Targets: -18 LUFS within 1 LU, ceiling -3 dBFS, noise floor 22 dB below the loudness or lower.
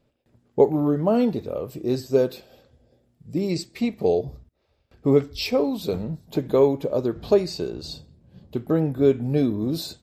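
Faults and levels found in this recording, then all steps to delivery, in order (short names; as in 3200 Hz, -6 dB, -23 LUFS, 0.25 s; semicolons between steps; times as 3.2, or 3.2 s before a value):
loudness -23.5 LUFS; peak -5.0 dBFS; loudness target -18.0 LUFS
-> gain +5.5 dB; limiter -3 dBFS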